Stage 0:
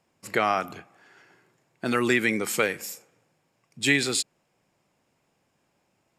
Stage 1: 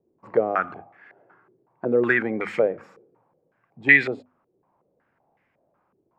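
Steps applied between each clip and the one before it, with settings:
mains-hum notches 50/100/150/200/250 Hz
low-pass on a step sequencer 5.4 Hz 390–2,000 Hz
level −1 dB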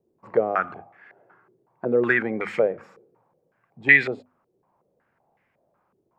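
parametric band 290 Hz −4 dB 0.32 octaves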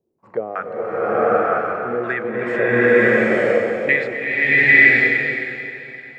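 feedback delay that plays each chunk backwards 283 ms, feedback 55%, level −11.5 dB
slow-attack reverb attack 960 ms, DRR −11.5 dB
level −3.5 dB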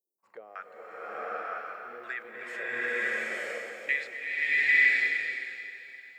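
first difference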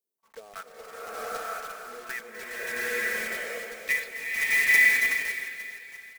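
one scale factor per block 3 bits
comb filter 4.5 ms, depth 46%

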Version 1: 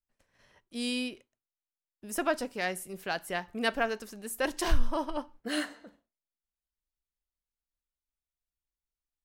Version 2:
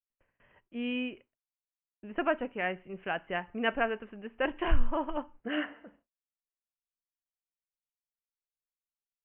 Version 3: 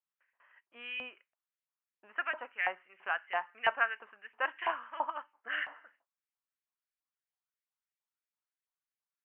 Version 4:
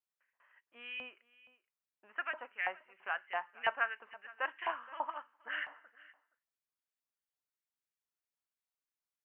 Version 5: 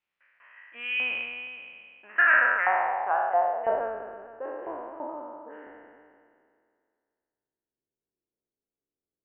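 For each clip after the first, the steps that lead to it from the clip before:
noise gate with hold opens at −56 dBFS; Butterworth low-pass 3,000 Hz 96 dB per octave
auto-filter high-pass saw up 3 Hz 840–2,200 Hz; high-shelf EQ 2,200 Hz −10 dB; level +1 dB
single-tap delay 471 ms −20.5 dB; level −3.5 dB
peak hold with a decay on every bin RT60 2.18 s; low-pass filter sweep 2,500 Hz → 390 Hz, 0:01.95–0:04.01; level +6.5 dB

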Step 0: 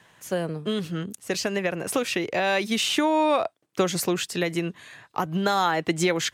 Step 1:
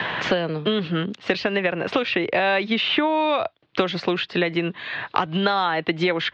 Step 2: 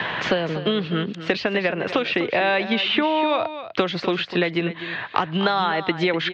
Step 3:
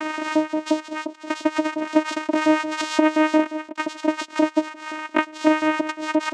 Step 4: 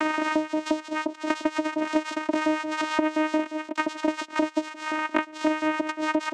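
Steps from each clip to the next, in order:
Butterworth low-pass 4,000 Hz 36 dB per octave; low-shelf EQ 370 Hz −5.5 dB; multiband upward and downward compressor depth 100%; level +4 dB
single-tap delay 249 ms −12 dB
pitch vibrato 3.8 Hz 88 cents; auto-filter high-pass saw up 5.7 Hz 360–2,500 Hz; channel vocoder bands 4, saw 310 Hz
multiband upward and downward compressor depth 100%; level −5.5 dB

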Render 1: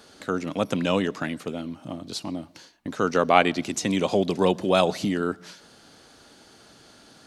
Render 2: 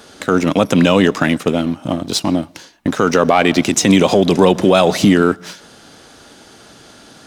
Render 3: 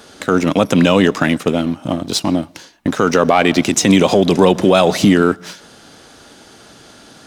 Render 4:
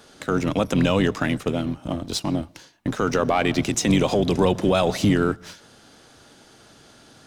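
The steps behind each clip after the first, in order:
leveller curve on the samples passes 1; notch filter 4,400 Hz, Q 14; boost into a limiter +13 dB; level −1 dB
no processing that can be heard
sub-octave generator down 1 octave, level −5 dB; level −8.5 dB

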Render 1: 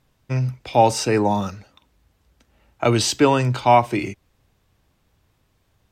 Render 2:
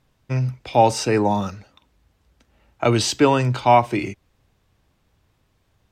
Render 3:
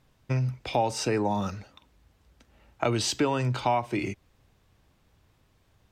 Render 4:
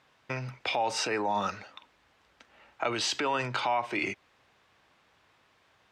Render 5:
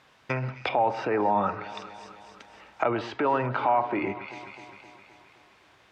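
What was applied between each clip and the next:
high-shelf EQ 9,600 Hz −5.5 dB
downward compressor 3 to 1, threshold −25 dBFS, peak gain reduction 12.5 dB
brickwall limiter −22.5 dBFS, peak gain reduction 11 dB; resonant band-pass 1,700 Hz, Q 0.61; level +8 dB
delay that swaps between a low-pass and a high-pass 130 ms, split 1,900 Hz, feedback 76%, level −14 dB; treble cut that deepens with the level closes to 1,300 Hz, closed at −29 dBFS; level +6 dB

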